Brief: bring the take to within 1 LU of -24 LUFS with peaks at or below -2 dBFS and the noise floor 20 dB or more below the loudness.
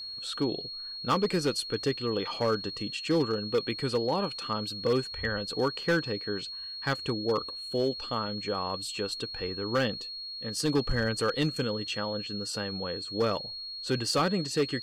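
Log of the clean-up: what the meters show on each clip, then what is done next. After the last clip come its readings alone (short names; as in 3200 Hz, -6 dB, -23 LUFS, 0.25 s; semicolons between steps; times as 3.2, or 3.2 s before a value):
clipped 0.9%; flat tops at -20.0 dBFS; steady tone 4300 Hz; tone level -37 dBFS; loudness -30.5 LUFS; peak -20.0 dBFS; loudness target -24.0 LUFS
-> clip repair -20 dBFS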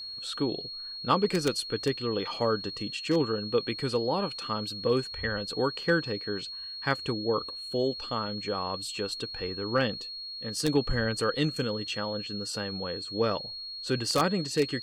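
clipped 0.0%; steady tone 4300 Hz; tone level -37 dBFS
-> notch 4300 Hz, Q 30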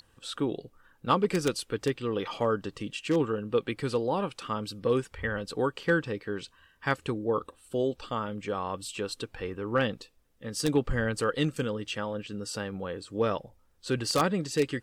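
steady tone none; loudness -30.5 LUFS; peak -11.0 dBFS; loudness target -24.0 LUFS
-> gain +6.5 dB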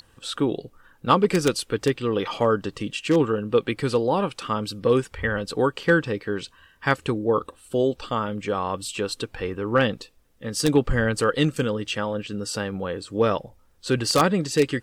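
loudness -24.0 LUFS; peak -4.5 dBFS; noise floor -58 dBFS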